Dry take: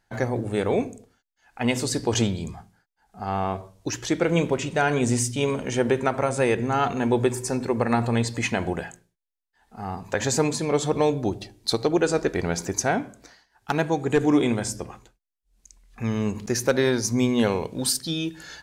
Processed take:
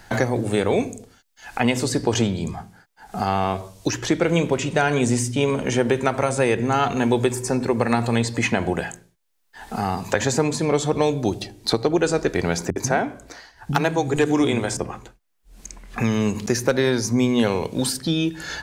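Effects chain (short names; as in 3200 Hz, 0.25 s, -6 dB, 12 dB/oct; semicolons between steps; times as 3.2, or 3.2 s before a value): 12.7–14.77 bands offset in time lows, highs 60 ms, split 220 Hz; three-band squash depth 70%; gain +2.5 dB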